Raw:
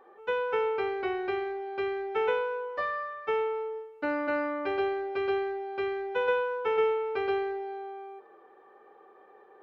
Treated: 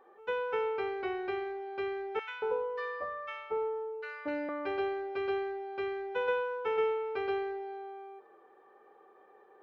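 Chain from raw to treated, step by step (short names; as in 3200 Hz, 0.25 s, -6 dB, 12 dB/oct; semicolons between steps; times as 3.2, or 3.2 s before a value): 2.19–4.49 bands offset in time highs, lows 0.23 s, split 1200 Hz; gain -4 dB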